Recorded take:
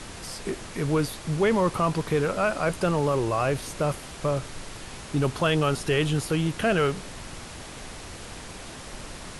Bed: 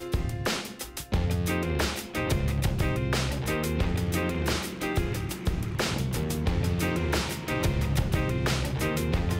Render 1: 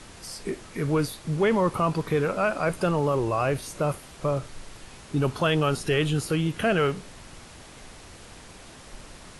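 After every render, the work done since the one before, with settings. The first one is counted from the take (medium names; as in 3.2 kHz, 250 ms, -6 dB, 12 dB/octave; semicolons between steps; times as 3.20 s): noise print and reduce 6 dB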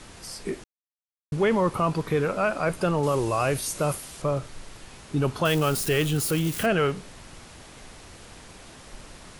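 0.64–1.32 s: mute; 3.03–4.22 s: treble shelf 4.4 kHz +11.5 dB; 5.45–6.66 s: zero-crossing glitches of -25 dBFS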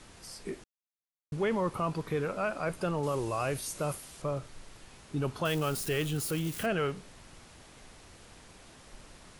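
trim -7.5 dB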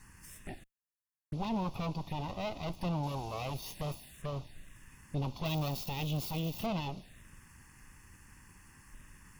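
comb filter that takes the minimum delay 1.1 ms; touch-sensitive phaser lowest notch 570 Hz, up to 1.7 kHz, full sweep at -34 dBFS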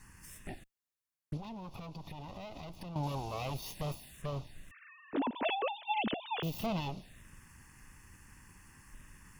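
1.37–2.96 s: compression 12:1, threshold -41 dBFS; 4.71–6.43 s: formants replaced by sine waves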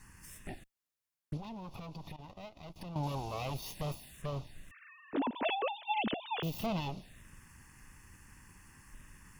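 2.16–2.76 s: gate -46 dBFS, range -16 dB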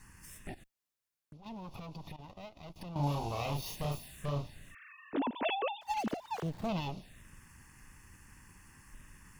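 0.54–1.46 s: compression, threshold -51 dBFS; 2.93–5.12 s: doubling 35 ms -2 dB; 5.81–6.69 s: median filter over 15 samples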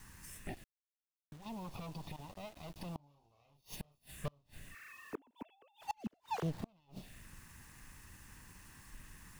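bit crusher 10-bit; inverted gate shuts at -28 dBFS, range -35 dB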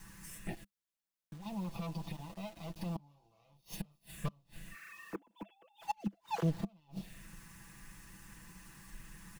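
peaking EQ 200 Hz +7 dB 0.29 oct; comb 6 ms, depth 67%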